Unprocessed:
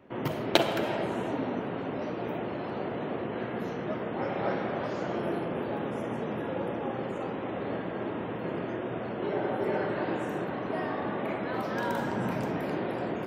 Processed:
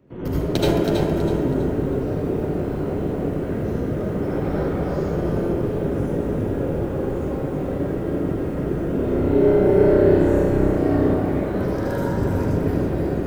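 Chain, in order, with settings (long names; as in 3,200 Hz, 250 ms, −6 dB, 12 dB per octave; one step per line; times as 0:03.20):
sub-octave generator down 1 octave, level 0 dB
flat-topped bell 1,500 Hz −9.5 dB 2.8 octaves
0:08.84–0:11.05: flutter between parallel walls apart 5.4 metres, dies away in 0.89 s
convolution reverb RT60 0.90 s, pre-delay 67 ms, DRR −7.5 dB
feedback echo at a low word length 324 ms, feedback 35%, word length 8 bits, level −6 dB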